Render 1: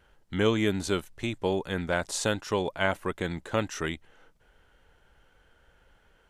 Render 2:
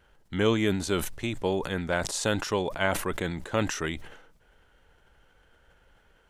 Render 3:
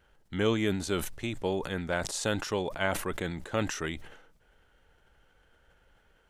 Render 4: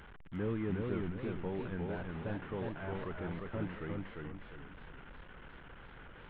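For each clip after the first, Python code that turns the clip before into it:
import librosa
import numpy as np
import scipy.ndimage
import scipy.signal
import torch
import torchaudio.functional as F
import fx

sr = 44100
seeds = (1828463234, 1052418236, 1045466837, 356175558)

y1 = fx.sustainer(x, sr, db_per_s=68.0)
y2 = fx.notch(y1, sr, hz=1000.0, q=23.0)
y2 = y2 * librosa.db_to_amplitude(-3.0)
y3 = fx.delta_mod(y2, sr, bps=16000, step_db=-39.0)
y3 = fx.graphic_eq_15(y3, sr, hz=(160, 630, 2500), db=(4, -5, -5))
y3 = fx.echo_warbled(y3, sr, ms=356, feedback_pct=39, rate_hz=2.8, cents=152, wet_db=-3)
y3 = y3 * librosa.db_to_amplitude(-7.5)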